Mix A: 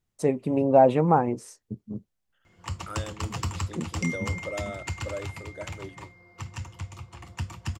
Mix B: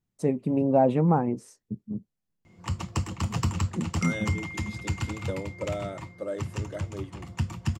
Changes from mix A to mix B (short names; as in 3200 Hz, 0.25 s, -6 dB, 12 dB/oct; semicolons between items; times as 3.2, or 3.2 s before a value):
first voice -6.0 dB; second voice: entry +1.15 s; master: add bell 190 Hz +9 dB 1.7 oct